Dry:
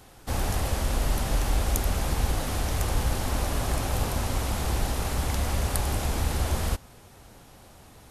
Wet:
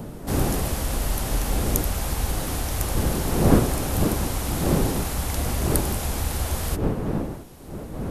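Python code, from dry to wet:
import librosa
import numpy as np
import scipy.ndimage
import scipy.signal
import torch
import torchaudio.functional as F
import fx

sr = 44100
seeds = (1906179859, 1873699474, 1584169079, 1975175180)

y = fx.dmg_wind(x, sr, seeds[0], corner_hz=320.0, level_db=-27.0)
y = fx.high_shelf(y, sr, hz=9700.0, db=10.5)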